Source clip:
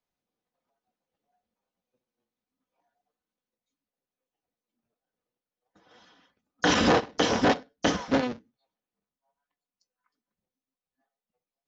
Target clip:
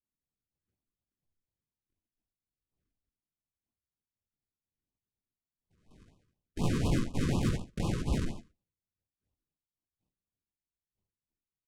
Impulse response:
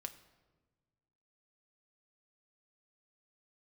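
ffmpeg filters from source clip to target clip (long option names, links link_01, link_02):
-filter_complex "[0:a]agate=range=-10dB:threshold=-57dB:ratio=16:detection=peak,asetrate=83250,aresample=44100,atempo=0.529732,highpass=110,aecho=1:1:21|47|57:0.501|0.422|0.531[link_01];[1:a]atrim=start_sample=2205,atrim=end_sample=3528[link_02];[link_01][link_02]afir=irnorm=-1:irlink=0,aresample=16000,acrusher=samples=35:mix=1:aa=0.000001,aresample=44100,asoftclip=type=tanh:threshold=-21dB,alimiter=level_in=4dB:limit=-24dB:level=0:latency=1:release=86,volume=-4dB,adynamicequalizer=threshold=0.00224:dfrequency=190:dqfactor=2.5:tfrequency=190:tqfactor=2.5:attack=5:release=100:ratio=0.375:range=2.5:mode=boostabove:tftype=bell,asplit=3[link_03][link_04][link_05];[link_04]asetrate=55563,aresample=44100,atempo=0.793701,volume=-1dB[link_06];[link_05]asetrate=66075,aresample=44100,atempo=0.66742,volume=-2dB[link_07];[link_03][link_06][link_07]amix=inputs=3:normalize=0,afftfilt=real='re*(1-between(b*sr/1024,680*pow(1800/680,0.5+0.5*sin(2*PI*4.1*pts/sr))/1.41,680*pow(1800/680,0.5+0.5*sin(2*PI*4.1*pts/sr))*1.41))':imag='im*(1-between(b*sr/1024,680*pow(1800/680,0.5+0.5*sin(2*PI*4.1*pts/sr))/1.41,680*pow(1800/680,0.5+0.5*sin(2*PI*4.1*pts/sr))*1.41))':win_size=1024:overlap=0.75"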